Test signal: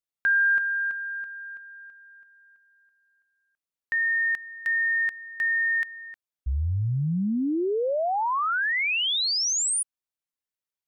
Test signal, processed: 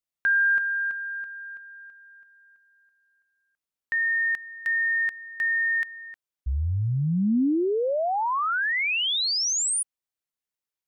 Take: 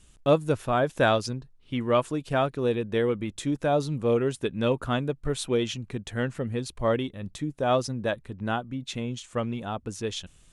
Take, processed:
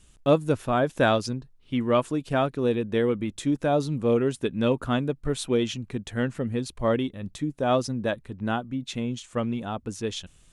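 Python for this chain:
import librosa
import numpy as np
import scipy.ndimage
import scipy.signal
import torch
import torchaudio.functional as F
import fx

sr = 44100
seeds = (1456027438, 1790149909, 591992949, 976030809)

y = fx.dynamic_eq(x, sr, hz=250.0, q=1.6, threshold_db=-39.0, ratio=3.0, max_db=4)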